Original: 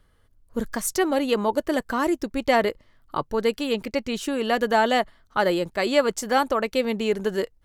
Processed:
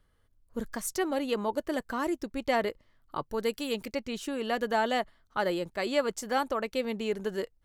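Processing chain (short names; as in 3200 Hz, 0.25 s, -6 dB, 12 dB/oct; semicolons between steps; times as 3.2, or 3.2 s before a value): 3.28–3.93 high shelf 9500 Hz -> 4700 Hz +10 dB; gain -7.5 dB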